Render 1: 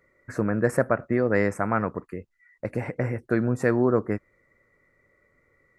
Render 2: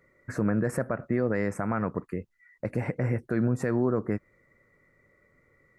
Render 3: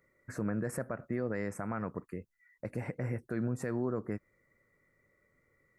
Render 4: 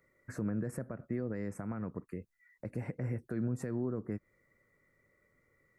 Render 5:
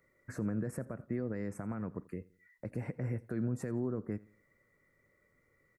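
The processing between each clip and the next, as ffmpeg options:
ffmpeg -i in.wav -af "equalizer=frequency=160:width_type=o:width=1.4:gain=4.5,alimiter=limit=-16dB:level=0:latency=1:release=130" out.wav
ffmpeg -i in.wav -af "highshelf=frequency=6500:gain=8.5,volume=-8dB" out.wav
ffmpeg -i in.wav -filter_complex "[0:a]acrossover=split=400[link_01][link_02];[link_02]acompressor=threshold=-48dB:ratio=3[link_03];[link_01][link_03]amix=inputs=2:normalize=0" out.wav
ffmpeg -i in.wav -af "aecho=1:1:85|170|255:0.0794|0.0302|0.0115" out.wav

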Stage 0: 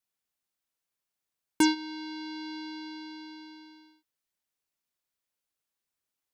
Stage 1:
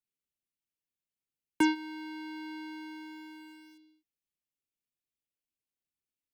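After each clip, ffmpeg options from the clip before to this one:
ffmpeg -i in.wav -filter_complex "[0:a]highshelf=frequency=3200:width_type=q:width=1.5:gain=-7,acrossover=split=230|480|2500[link_01][link_02][link_03][link_04];[link_03]aeval=exprs='val(0)*gte(abs(val(0)),0.0015)':channel_layout=same[link_05];[link_01][link_02][link_05][link_04]amix=inputs=4:normalize=0,volume=-2.5dB" out.wav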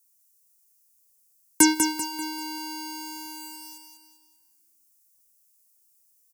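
ffmpeg -i in.wav -af "aexciter=amount=10.6:drive=4.8:freq=5100,aecho=1:1:195|390|585|780|975:0.501|0.205|0.0842|0.0345|0.0142,volume=6dB" out.wav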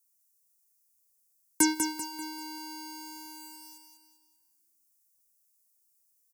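ffmpeg -i in.wav -af "equalizer=frequency=3000:width_type=o:width=0.22:gain=-7.5,volume=-6.5dB" out.wav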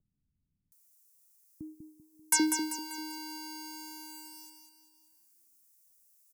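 ffmpeg -i in.wav -filter_complex "[0:a]acrossover=split=190|630[link_01][link_02][link_03];[link_03]adelay=720[link_04];[link_02]adelay=790[link_05];[link_01][link_05][link_04]amix=inputs=3:normalize=0,acompressor=mode=upward:threshold=-58dB:ratio=2.5" out.wav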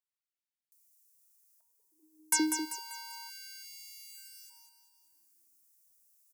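ffmpeg -i in.wav -af "afftfilt=real='re*gte(b*sr/1024,250*pow(1800/250,0.5+0.5*sin(2*PI*0.32*pts/sr)))':imag='im*gte(b*sr/1024,250*pow(1800/250,0.5+0.5*sin(2*PI*0.32*pts/sr)))':win_size=1024:overlap=0.75,volume=-2dB" out.wav

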